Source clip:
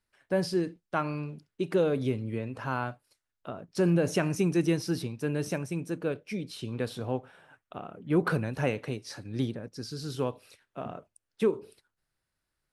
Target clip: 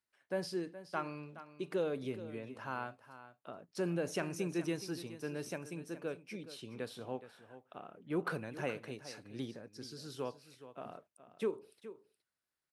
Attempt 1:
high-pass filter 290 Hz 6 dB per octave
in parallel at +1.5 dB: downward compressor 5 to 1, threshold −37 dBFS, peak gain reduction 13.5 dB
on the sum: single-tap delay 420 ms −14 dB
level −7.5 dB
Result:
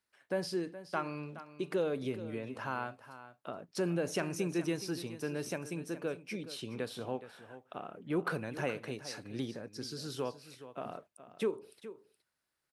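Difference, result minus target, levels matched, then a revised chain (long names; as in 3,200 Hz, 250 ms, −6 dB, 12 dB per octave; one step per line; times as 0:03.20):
downward compressor: peak gain reduction +13.5 dB
high-pass filter 290 Hz 6 dB per octave
single-tap delay 420 ms −14 dB
level −7.5 dB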